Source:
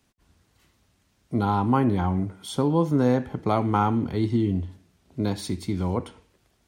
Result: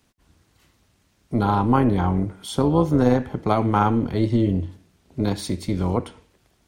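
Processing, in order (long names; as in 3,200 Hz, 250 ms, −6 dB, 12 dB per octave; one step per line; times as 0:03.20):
amplitude modulation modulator 230 Hz, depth 35%
level +5.5 dB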